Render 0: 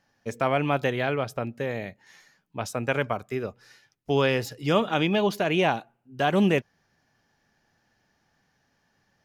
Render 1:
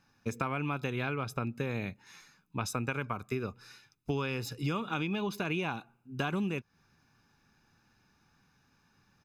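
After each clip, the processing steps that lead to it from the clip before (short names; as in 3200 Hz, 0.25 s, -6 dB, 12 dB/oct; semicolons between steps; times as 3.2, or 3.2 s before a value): comb 0.8 ms, depth 62%; compressor 16:1, threshold -29 dBFS, peak gain reduction 14.5 dB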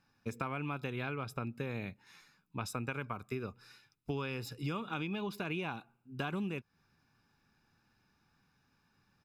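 notch 6300 Hz, Q 8.9; gain -4.5 dB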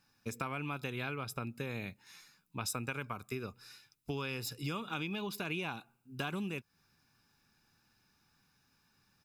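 high shelf 3800 Hz +11.5 dB; gain -1.5 dB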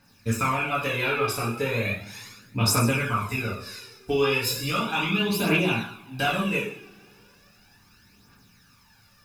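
two-slope reverb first 0.6 s, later 3.6 s, from -28 dB, DRR -8.5 dB; phaser 0.36 Hz, delay 2.7 ms, feedback 51%; gain +4.5 dB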